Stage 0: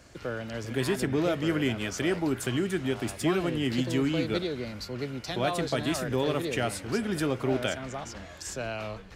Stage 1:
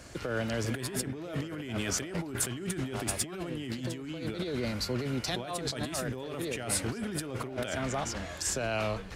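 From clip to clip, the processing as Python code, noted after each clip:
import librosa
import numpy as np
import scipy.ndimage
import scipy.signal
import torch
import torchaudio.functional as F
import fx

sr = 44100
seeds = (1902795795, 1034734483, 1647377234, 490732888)

y = fx.over_compress(x, sr, threshold_db=-35.0, ratio=-1.0)
y = fx.peak_eq(y, sr, hz=9700.0, db=4.5, octaves=0.71)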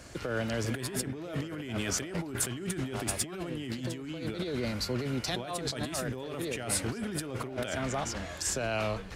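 y = x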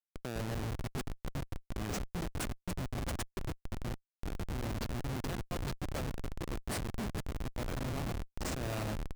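y = fx.echo_split(x, sr, split_hz=1800.0, low_ms=99, high_ms=281, feedback_pct=52, wet_db=-7.0)
y = fx.schmitt(y, sr, flips_db=-27.5)
y = F.gain(torch.from_numpy(y), -2.5).numpy()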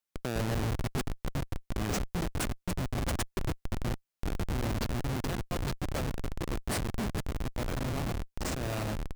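y = fx.rider(x, sr, range_db=10, speed_s=2.0)
y = F.gain(torch.from_numpy(y), 4.5).numpy()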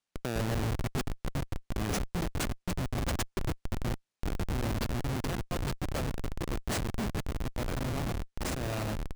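y = fx.sample_hold(x, sr, seeds[0], rate_hz=16000.0, jitter_pct=0)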